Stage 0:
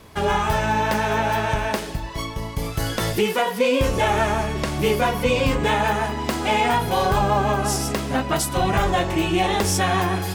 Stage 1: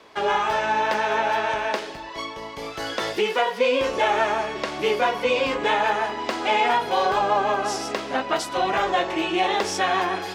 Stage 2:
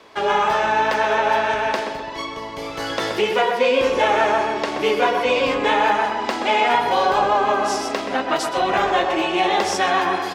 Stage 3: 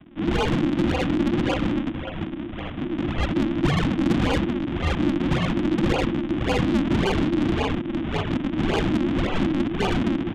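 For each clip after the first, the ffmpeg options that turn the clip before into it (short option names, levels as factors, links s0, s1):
-filter_complex "[0:a]acrossover=split=290 6100:gain=0.0708 1 0.112[s0][s1][s2];[s0][s1][s2]amix=inputs=3:normalize=0"
-filter_complex "[0:a]asplit=2[s0][s1];[s1]adelay=126,lowpass=f=2000:p=1,volume=0.562,asplit=2[s2][s3];[s3]adelay=126,lowpass=f=2000:p=1,volume=0.53,asplit=2[s4][s5];[s5]adelay=126,lowpass=f=2000:p=1,volume=0.53,asplit=2[s6][s7];[s7]adelay=126,lowpass=f=2000:p=1,volume=0.53,asplit=2[s8][s9];[s9]adelay=126,lowpass=f=2000:p=1,volume=0.53,asplit=2[s10][s11];[s11]adelay=126,lowpass=f=2000:p=1,volume=0.53,asplit=2[s12][s13];[s13]adelay=126,lowpass=f=2000:p=1,volume=0.53[s14];[s0][s2][s4][s6][s8][s10][s12][s14]amix=inputs=8:normalize=0,volume=1.33"
-af "aresample=8000,acrusher=samples=17:mix=1:aa=0.000001:lfo=1:lforange=27.2:lforate=1.8,aresample=44100,asoftclip=type=tanh:threshold=0.141,afreqshift=-360"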